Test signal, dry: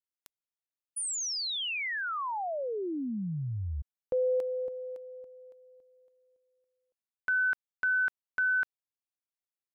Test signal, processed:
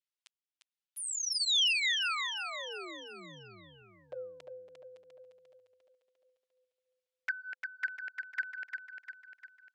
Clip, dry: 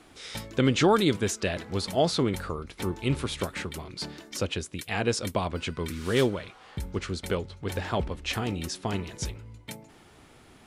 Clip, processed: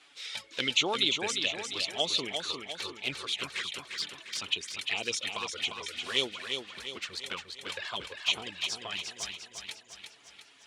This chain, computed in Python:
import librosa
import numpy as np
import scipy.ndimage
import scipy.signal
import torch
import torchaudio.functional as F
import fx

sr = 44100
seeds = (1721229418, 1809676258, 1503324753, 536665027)

p1 = scipy.signal.sosfilt(scipy.signal.butter(4, 9700.0, 'lowpass', fs=sr, output='sos'), x)
p2 = fx.dereverb_blind(p1, sr, rt60_s=0.57)
p3 = fx.highpass(p2, sr, hz=1200.0, slope=6)
p4 = fx.peak_eq(p3, sr, hz=3100.0, db=9.5, octaves=1.6)
p5 = fx.env_flanger(p4, sr, rest_ms=8.1, full_db=-24.5)
p6 = p5 + fx.echo_feedback(p5, sr, ms=350, feedback_pct=50, wet_db=-6, dry=0)
y = F.gain(torch.from_numpy(p6), -1.5).numpy()